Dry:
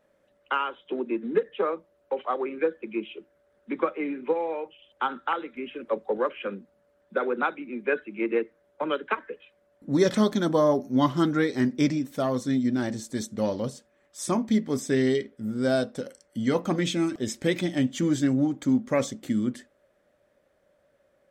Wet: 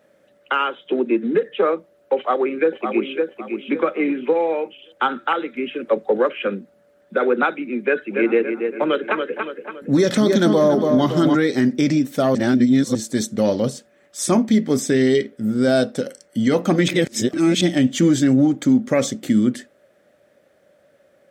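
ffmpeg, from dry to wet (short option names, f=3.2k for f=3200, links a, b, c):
-filter_complex "[0:a]asplit=2[a][b];[b]afade=t=in:st=2.16:d=0.01,afade=t=out:st=3.17:d=0.01,aecho=0:1:560|1120|1680|2240:0.473151|0.141945|0.0425836|0.0127751[c];[a][c]amix=inputs=2:normalize=0,asplit=3[d][e][f];[d]afade=t=out:st=8.09:d=0.02[g];[e]asplit=2[h][i];[i]adelay=282,lowpass=f=3.3k:p=1,volume=-7.5dB,asplit=2[j][k];[k]adelay=282,lowpass=f=3.3k:p=1,volume=0.48,asplit=2[l][m];[m]adelay=282,lowpass=f=3.3k:p=1,volume=0.48,asplit=2[n][o];[o]adelay=282,lowpass=f=3.3k:p=1,volume=0.48,asplit=2[p][q];[q]adelay=282,lowpass=f=3.3k:p=1,volume=0.48,asplit=2[r][s];[s]adelay=282,lowpass=f=3.3k:p=1,volume=0.48[t];[h][j][l][n][p][r][t]amix=inputs=7:normalize=0,afade=t=in:st=8.09:d=0.02,afade=t=out:st=11.35:d=0.02[u];[f]afade=t=in:st=11.35:d=0.02[v];[g][u][v]amix=inputs=3:normalize=0,asplit=5[w][x][y][z][aa];[w]atrim=end=12.352[ab];[x]atrim=start=12.348:end=12.952,asetpts=PTS-STARTPTS,areverse[ac];[y]atrim=start=12.948:end=16.882[ad];[z]atrim=start=16.878:end=17.612,asetpts=PTS-STARTPTS,areverse[ae];[aa]atrim=start=17.608[af];[ab][ac]acrossfade=d=0.004:c1=hsin:c2=hsin[ag];[ag][ad]acrossfade=d=0.004:c1=hsin:c2=hsin[ah];[ah][ae]acrossfade=d=0.004:c1=hsin:c2=hsin[ai];[ai][af]acrossfade=d=0.004:c1=hsin:c2=hsin,highpass=110,equalizer=f=1k:w=3.5:g=-6.5,alimiter=level_in=16.5dB:limit=-1dB:release=50:level=0:latency=1,volume=-6.5dB"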